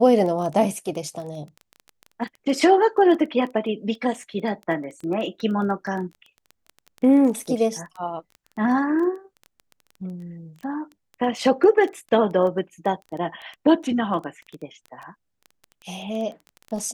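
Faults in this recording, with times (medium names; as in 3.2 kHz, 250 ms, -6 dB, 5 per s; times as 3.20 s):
crackle 13 per s -30 dBFS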